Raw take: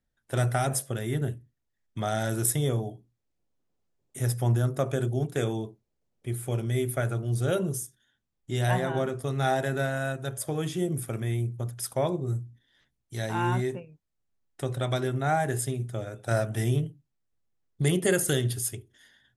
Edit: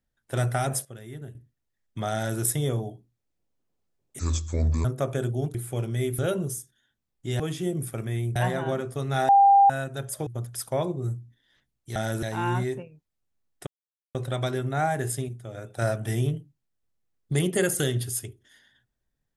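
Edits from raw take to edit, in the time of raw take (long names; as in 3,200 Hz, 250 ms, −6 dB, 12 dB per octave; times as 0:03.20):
0:00.85–0:01.35: clip gain −11 dB
0:02.13–0:02.40: duplicate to 0:13.20
0:04.19–0:04.63: play speed 67%
0:05.33–0:06.30: remove
0:06.94–0:07.43: remove
0:09.57–0:09.98: beep over 796 Hz −12.5 dBFS
0:10.55–0:11.51: move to 0:08.64
0:14.64: splice in silence 0.48 s
0:15.78–0:16.04: clip gain −6 dB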